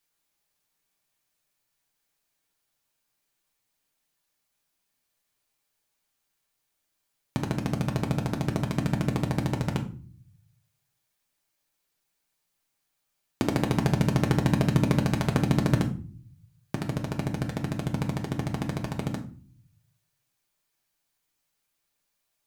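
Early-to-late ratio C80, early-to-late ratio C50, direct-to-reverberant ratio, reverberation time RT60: 17.0 dB, 12.0 dB, 1.5 dB, 0.40 s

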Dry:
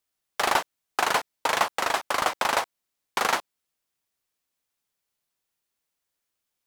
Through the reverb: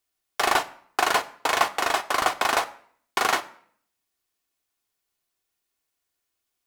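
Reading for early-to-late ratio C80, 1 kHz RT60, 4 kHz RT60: 21.0 dB, 0.55 s, 0.45 s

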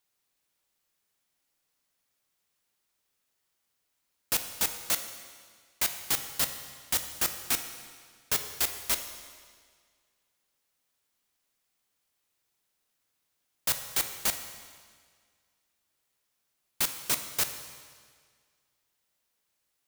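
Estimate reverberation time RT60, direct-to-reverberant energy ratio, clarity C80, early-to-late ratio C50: 1.8 s, 7.0 dB, 10.0 dB, 8.5 dB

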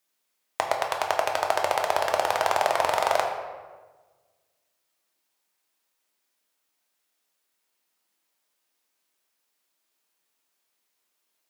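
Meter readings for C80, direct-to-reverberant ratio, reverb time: 6.5 dB, 1.0 dB, 1.4 s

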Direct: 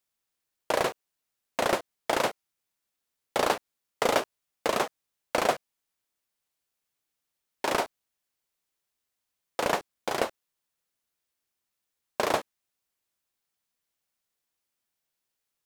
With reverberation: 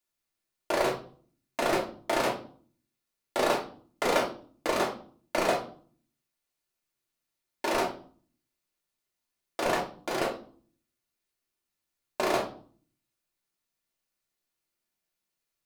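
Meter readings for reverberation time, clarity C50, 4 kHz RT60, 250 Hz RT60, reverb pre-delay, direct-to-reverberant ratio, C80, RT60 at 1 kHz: 0.45 s, 8.5 dB, 0.35 s, 0.70 s, 3 ms, −2.5 dB, 14.5 dB, 0.45 s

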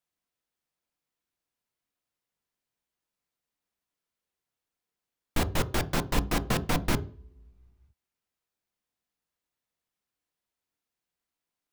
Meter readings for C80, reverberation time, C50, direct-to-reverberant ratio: 22.0 dB, non-exponential decay, 18.0 dB, 9.5 dB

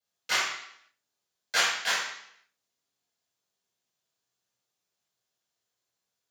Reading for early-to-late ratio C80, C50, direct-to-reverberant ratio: 5.5 dB, 2.0 dB, −10.5 dB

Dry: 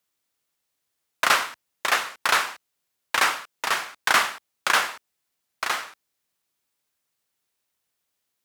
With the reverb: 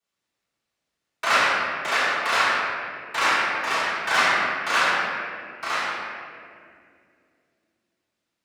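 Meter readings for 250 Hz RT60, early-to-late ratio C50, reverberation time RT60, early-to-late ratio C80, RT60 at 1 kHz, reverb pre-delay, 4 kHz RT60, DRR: 3.6 s, −3.5 dB, 2.3 s, −1.5 dB, 1.9 s, 5 ms, 1.4 s, −13.0 dB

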